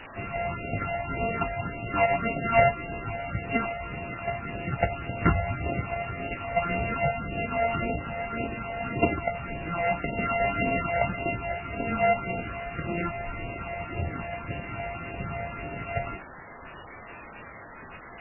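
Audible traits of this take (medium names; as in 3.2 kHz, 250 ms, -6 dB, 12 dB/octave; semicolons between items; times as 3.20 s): a buzz of ramps at a fixed pitch in blocks of 64 samples; phasing stages 6, 1.8 Hz, lowest notch 300–1600 Hz; a quantiser's noise floor 6-bit, dither triangular; MP3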